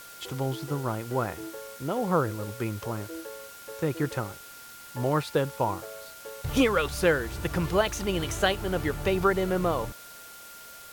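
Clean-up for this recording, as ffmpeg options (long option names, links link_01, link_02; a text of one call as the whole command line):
ffmpeg -i in.wav -af "bandreject=frequency=1400:width=30,afftdn=noise_reduction=27:noise_floor=-46" out.wav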